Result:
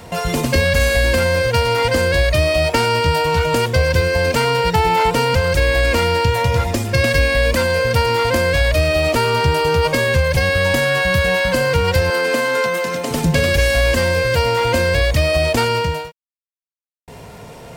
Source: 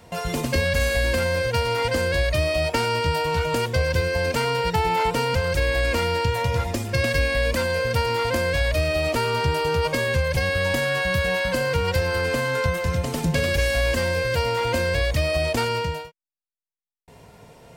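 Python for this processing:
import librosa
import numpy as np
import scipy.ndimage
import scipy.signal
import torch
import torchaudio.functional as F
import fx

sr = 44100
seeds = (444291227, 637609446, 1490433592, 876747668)

y = fx.law_mismatch(x, sr, coded='mu')
y = fx.highpass(y, sr, hz=210.0, slope=24, at=(12.1, 13.11))
y = y * librosa.db_to_amplitude(6.0)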